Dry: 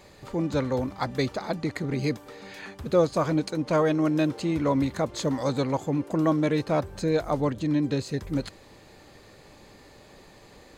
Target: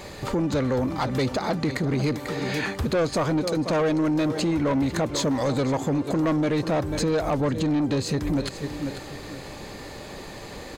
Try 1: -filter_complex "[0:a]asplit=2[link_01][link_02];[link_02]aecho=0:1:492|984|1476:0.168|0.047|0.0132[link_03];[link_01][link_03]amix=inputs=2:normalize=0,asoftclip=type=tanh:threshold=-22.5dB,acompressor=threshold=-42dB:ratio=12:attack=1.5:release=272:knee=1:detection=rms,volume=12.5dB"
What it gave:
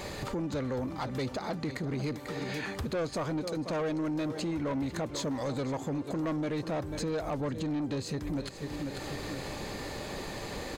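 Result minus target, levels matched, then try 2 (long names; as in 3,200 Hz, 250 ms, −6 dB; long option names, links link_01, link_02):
downward compressor: peak gain reduction +9 dB
-filter_complex "[0:a]asplit=2[link_01][link_02];[link_02]aecho=0:1:492|984|1476:0.168|0.047|0.0132[link_03];[link_01][link_03]amix=inputs=2:normalize=0,asoftclip=type=tanh:threshold=-22.5dB,acompressor=threshold=-32dB:ratio=12:attack=1.5:release=272:knee=1:detection=rms,volume=12.5dB"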